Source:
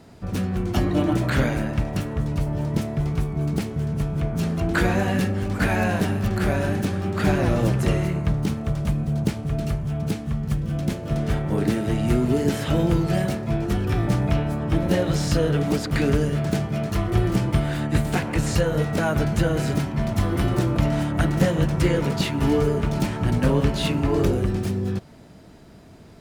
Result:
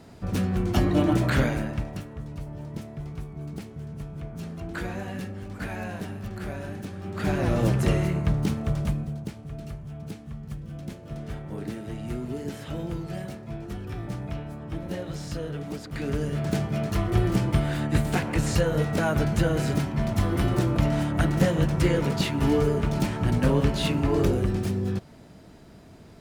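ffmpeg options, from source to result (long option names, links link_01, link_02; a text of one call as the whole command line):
ffmpeg -i in.wav -af "volume=20dB,afade=type=out:start_time=1.26:duration=0.82:silence=0.266073,afade=type=in:start_time=6.96:duration=0.73:silence=0.298538,afade=type=out:start_time=8.79:duration=0.41:silence=0.298538,afade=type=in:start_time=15.93:duration=0.7:silence=0.316228" out.wav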